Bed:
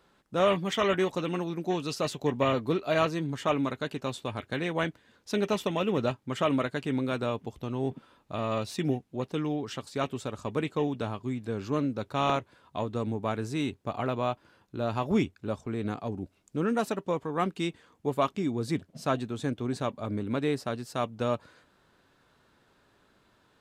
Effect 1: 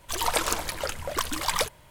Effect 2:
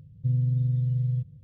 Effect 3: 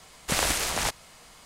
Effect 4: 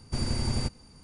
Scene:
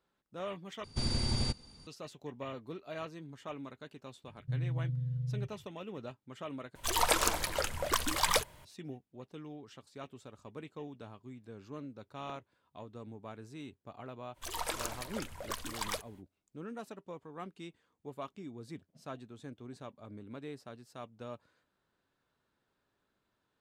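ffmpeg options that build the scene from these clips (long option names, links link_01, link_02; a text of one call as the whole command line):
ffmpeg -i bed.wav -i cue0.wav -i cue1.wav -i cue2.wav -i cue3.wav -filter_complex "[1:a]asplit=2[link_01][link_02];[0:a]volume=-16dB[link_03];[4:a]equalizer=frequency=3700:width=2.1:gain=9.5[link_04];[link_03]asplit=3[link_05][link_06][link_07];[link_05]atrim=end=0.844[link_08];[link_04]atrim=end=1.03,asetpts=PTS-STARTPTS,volume=-4dB[link_09];[link_06]atrim=start=1.866:end=6.754[link_10];[link_01]atrim=end=1.9,asetpts=PTS-STARTPTS,volume=-2.5dB[link_11];[link_07]atrim=start=8.646[link_12];[2:a]atrim=end=1.43,asetpts=PTS-STARTPTS,volume=-10dB,afade=type=in:duration=0.004:curve=hsin,afade=type=out:start_time=1.426:duration=0.004:curve=hsin,adelay=4240[link_13];[link_02]atrim=end=1.9,asetpts=PTS-STARTPTS,volume=-11.5dB,afade=type=in:duration=0.05,afade=type=out:start_time=1.85:duration=0.05,adelay=14330[link_14];[link_08][link_09]acrossfade=duration=0.004:curve1=hsin:curve2=hsin[link_15];[link_15][link_10]acrossfade=duration=0.004:curve1=hsin:curve2=hsin[link_16];[link_16][link_11]acrossfade=duration=0.004:curve1=hsin:curve2=hsin[link_17];[link_17][link_12]acrossfade=duration=0.004:curve1=hsin:curve2=hsin[link_18];[link_18][link_13][link_14]amix=inputs=3:normalize=0" out.wav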